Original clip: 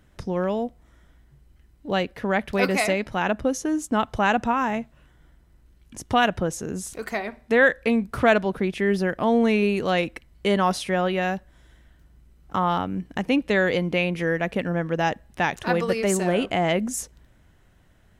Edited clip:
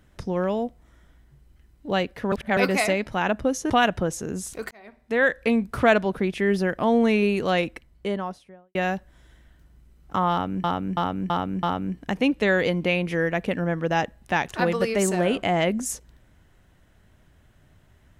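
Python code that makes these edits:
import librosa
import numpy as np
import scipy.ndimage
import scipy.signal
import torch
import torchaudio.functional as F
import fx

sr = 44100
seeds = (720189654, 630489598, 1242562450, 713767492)

y = fx.studio_fade_out(x, sr, start_s=9.93, length_s=1.22)
y = fx.edit(y, sr, fx.reverse_span(start_s=2.32, length_s=0.25),
    fx.cut(start_s=3.7, length_s=2.4),
    fx.fade_in_span(start_s=7.11, length_s=0.75),
    fx.repeat(start_s=12.71, length_s=0.33, count=5), tone=tone)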